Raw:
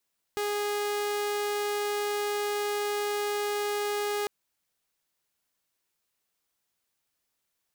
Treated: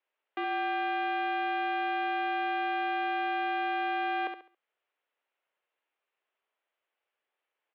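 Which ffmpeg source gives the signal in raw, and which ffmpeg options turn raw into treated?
-f lavfi -i "aevalsrc='0.0562*(2*mod(413*t,1)-1)':duration=3.9:sample_rate=44100"
-filter_complex "[0:a]equalizer=frequency=610:width_type=o:width=0.77:gain=2.5,asplit=2[link_01][link_02];[link_02]aecho=0:1:69|138|207|276:0.447|0.134|0.0402|0.0121[link_03];[link_01][link_03]amix=inputs=2:normalize=0,highpass=frequency=460:width_type=q:width=0.5412,highpass=frequency=460:width_type=q:width=1.307,lowpass=frequency=3100:width_type=q:width=0.5176,lowpass=frequency=3100:width_type=q:width=0.7071,lowpass=frequency=3100:width_type=q:width=1.932,afreqshift=-65"

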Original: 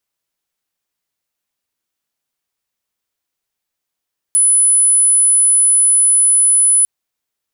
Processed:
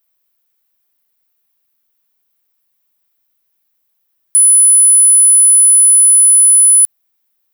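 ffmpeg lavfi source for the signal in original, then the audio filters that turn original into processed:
-f lavfi -i "aevalsrc='0.398*sin(2*PI*10000*t)':duration=2.5:sample_rate=44100"
-filter_complex "[0:a]equalizer=frequency=9800:width_type=o:width=0.92:gain=-4.5,asplit=2[link_01][link_02];[link_02]asoftclip=type=tanh:threshold=-26.5dB,volume=-5dB[link_03];[link_01][link_03]amix=inputs=2:normalize=0,aexciter=amount=2.9:drive=7.3:freq=9700"

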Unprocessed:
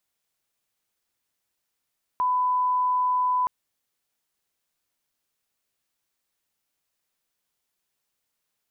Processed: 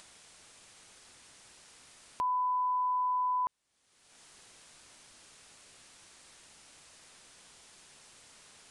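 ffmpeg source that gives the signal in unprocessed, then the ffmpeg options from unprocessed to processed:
-f lavfi -i "sine=frequency=1000:duration=1.27:sample_rate=44100,volume=-1.94dB"
-af "alimiter=level_in=3dB:limit=-24dB:level=0:latency=1:release=25,volume=-3dB,aresample=22050,aresample=44100,acompressor=mode=upward:threshold=-36dB:ratio=2.5"

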